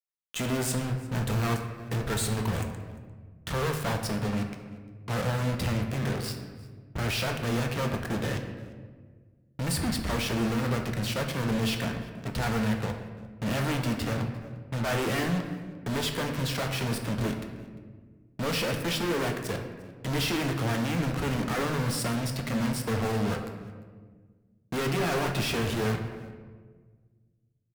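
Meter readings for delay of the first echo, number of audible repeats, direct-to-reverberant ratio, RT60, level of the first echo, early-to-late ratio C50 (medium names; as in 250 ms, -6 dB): 349 ms, 1, 3.5 dB, 1.6 s, -22.5 dB, 6.5 dB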